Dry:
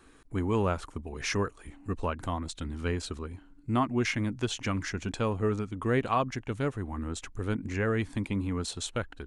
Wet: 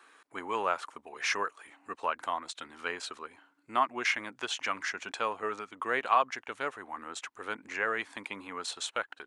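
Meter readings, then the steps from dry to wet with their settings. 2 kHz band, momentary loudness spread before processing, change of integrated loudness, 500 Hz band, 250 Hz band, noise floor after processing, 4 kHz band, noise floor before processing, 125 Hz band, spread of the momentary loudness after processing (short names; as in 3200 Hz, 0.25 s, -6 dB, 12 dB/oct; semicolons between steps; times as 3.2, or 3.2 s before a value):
+4.0 dB, 9 LU, -2.0 dB, -5.0 dB, -15.0 dB, -68 dBFS, +1.0 dB, -56 dBFS, -28.0 dB, 13 LU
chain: HPF 900 Hz 12 dB/oct; high shelf 3400 Hz -10 dB; gain +6.5 dB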